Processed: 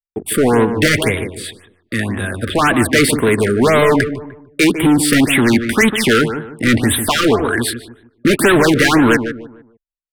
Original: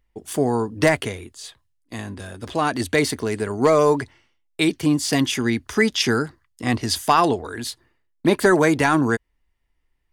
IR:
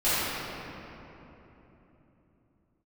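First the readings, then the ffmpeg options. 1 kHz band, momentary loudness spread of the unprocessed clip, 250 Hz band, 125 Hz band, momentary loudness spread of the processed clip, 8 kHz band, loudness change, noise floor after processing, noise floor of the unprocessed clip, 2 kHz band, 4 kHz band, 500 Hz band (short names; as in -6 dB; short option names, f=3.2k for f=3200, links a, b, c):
+3.5 dB, 17 LU, +8.0 dB, +7.5 dB, 11 LU, +9.0 dB, +6.5 dB, -80 dBFS, -69 dBFS, +9.5 dB, +7.0 dB, +5.5 dB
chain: -filter_complex "[0:a]apsyclip=10dB,lowshelf=f=95:g=-4.5,acrossover=split=380|1300|3200[a][b][c][d];[c]acontrast=51[e];[d]asuperstop=centerf=5200:order=12:qfactor=1.1[f];[a][b][e][f]amix=inputs=4:normalize=0,asoftclip=type=hard:threshold=-11.5dB,anlmdn=0.631,agate=range=-42dB:threshold=-46dB:ratio=16:detection=peak,equalizer=f=770:t=o:w=1:g=-4.5,asplit=2[g][h];[h]adelay=150,lowpass=f=1.5k:p=1,volume=-8.5dB,asplit=2[i][j];[j]adelay=150,lowpass=f=1.5k:p=1,volume=0.34,asplit=2[k][l];[l]adelay=150,lowpass=f=1.5k:p=1,volume=0.34,asplit=2[m][n];[n]adelay=150,lowpass=f=1.5k:p=1,volume=0.34[o];[g][i][k][m][o]amix=inputs=5:normalize=0,afftfilt=real='re*(1-between(b*sr/1024,800*pow(5900/800,0.5+0.5*sin(2*PI*1.9*pts/sr))/1.41,800*pow(5900/800,0.5+0.5*sin(2*PI*1.9*pts/sr))*1.41))':imag='im*(1-between(b*sr/1024,800*pow(5900/800,0.5+0.5*sin(2*PI*1.9*pts/sr))/1.41,800*pow(5900/800,0.5+0.5*sin(2*PI*1.9*pts/sr))*1.41))':win_size=1024:overlap=0.75,volume=3.5dB"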